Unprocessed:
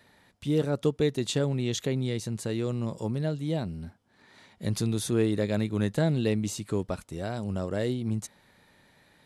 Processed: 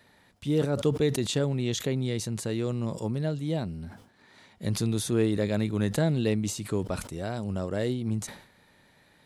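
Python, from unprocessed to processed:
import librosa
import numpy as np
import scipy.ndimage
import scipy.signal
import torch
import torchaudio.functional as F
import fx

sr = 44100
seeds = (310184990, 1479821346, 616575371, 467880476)

y = fx.sustainer(x, sr, db_per_s=100.0)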